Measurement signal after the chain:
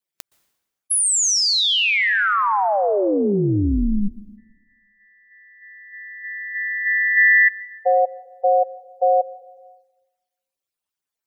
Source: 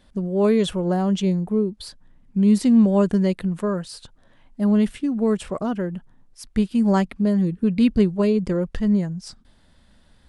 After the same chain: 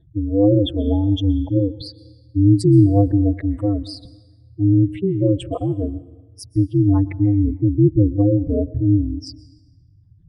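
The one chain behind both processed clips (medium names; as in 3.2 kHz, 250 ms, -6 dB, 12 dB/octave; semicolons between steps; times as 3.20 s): spectral contrast enhancement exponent 2.8; ring modulator 100 Hz; plate-style reverb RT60 1.2 s, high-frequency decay 0.85×, pre-delay 110 ms, DRR 18.5 dB; trim +6.5 dB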